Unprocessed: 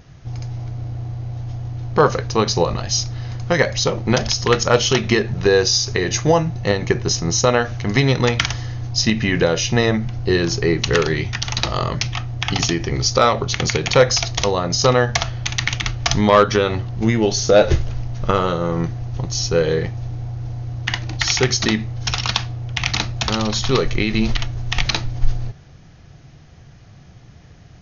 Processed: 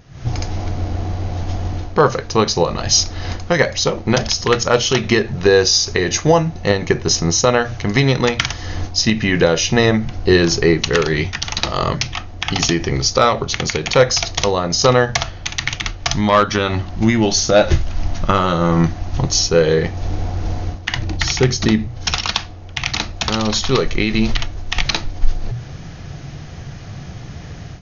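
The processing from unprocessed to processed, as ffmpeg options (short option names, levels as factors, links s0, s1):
-filter_complex "[0:a]asettb=1/sr,asplit=3[s0][s1][s2];[s0]atrim=end=16.114[s3];[s1]atrim=start=16.11:end=19.21,asetpts=PTS-STARTPTS,afade=t=in:d=0.004:c=qsin,afade=t=out:st=3.096:d=0.004:c=qsin,equalizer=f=450:w=5:g=-12.5[s4];[s2]atrim=start=19.206[s5];[s3][s4]acrossfade=d=0.004:c1=hsin:c2=qsin[s6];[s6][s5]acrossfade=d=0.004:c1=qsin:c2=hsin,asettb=1/sr,asplit=3[s7][s8][s9];[s7]atrim=end=20.964[s10];[s8]atrim=start=20.96:end=21.87,asetpts=PTS-STARTPTS,afade=t=in:d=0.004:c=qsin,afade=t=out:st=0.906:d=0.004:c=qsin,lowshelf=f=460:g=10[s11];[s9]atrim=start=21.866[s12];[s10][s11]acrossfade=d=0.004:c1=hsin:c2=qsin[s13];[s13][s12]acrossfade=d=0.004:c1=qsin:c2=hsin,bandreject=f=60:t=h:w=6,bandreject=f=120:t=h:w=6,dynaudnorm=f=110:g=3:m=5.01,volume=0.891"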